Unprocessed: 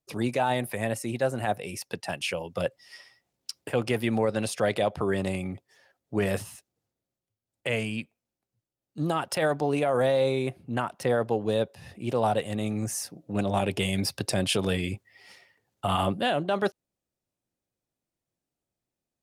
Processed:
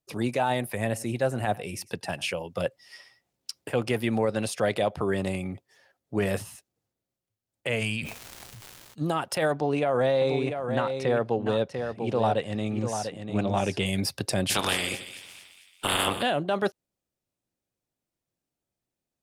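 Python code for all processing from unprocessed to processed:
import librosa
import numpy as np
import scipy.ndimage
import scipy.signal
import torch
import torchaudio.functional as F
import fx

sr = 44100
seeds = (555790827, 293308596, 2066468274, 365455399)

y = fx.chain(x, sr, fx.low_shelf(hz=130.0, db=5.0),
    fx.echo_single(ms=100, db=-20.5), at=(0.74, 2.29))
y = fx.peak_eq(y, sr, hz=310.0, db=-10.0, octaves=2.0, at=(7.8, 9.0), fade=0.02)
y = fx.dmg_crackle(y, sr, seeds[0], per_s=420.0, level_db=-70.0, at=(7.8, 9.0), fade=0.02)
y = fx.sustainer(y, sr, db_per_s=23.0, at=(7.8, 9.0), fade=0.02)
y = fx.chain(y, sr, fx.lowpass(hz=6100.0, slope=12),
    fx.echo_single(ms=694, db=-7.0), at=(9.52, 13.86))
y = fx.spec_clip(y, sr, under_db=27, at=(14.49, 16.21), fade=0.02)
y = fx.echo_split(y, sr, split_hz=2000.0, low_ms=82, high_ms=222, feedback_pct=52, wet_db=-12, at=(14.49, 16.21), fade=0.02)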